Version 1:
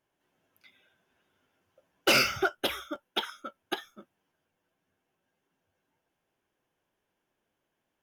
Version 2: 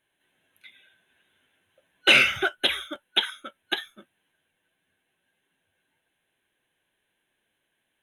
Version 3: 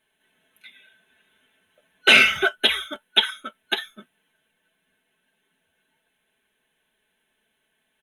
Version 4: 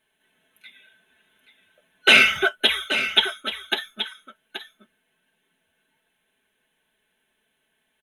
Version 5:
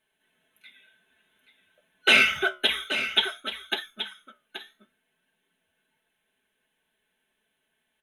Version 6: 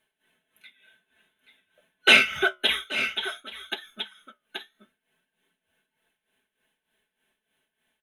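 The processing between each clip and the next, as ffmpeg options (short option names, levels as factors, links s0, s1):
-filter_complex "[0:a]acrossover=split=7700[s0][s1];[s1]acompressor=threshold=0.002:ratio=4:attack=1:release=60[s2];[s0][s2]amix=inputs=2:normalize=0,superequalizer=11b=2.82:12b=2.82:13b=3.16:14b=0.316:16b=3.16"
-af "aecho=1:1:4.6:0.65,volume=1.33"
-af "aecho=1:1:828:0.299"
-af "flanger=delay=9.6:depth=6.8:regen=-70:speed=0.54:shape=triangular"
-af "tremolo=f=3.3:d=0.74,volume=1.41"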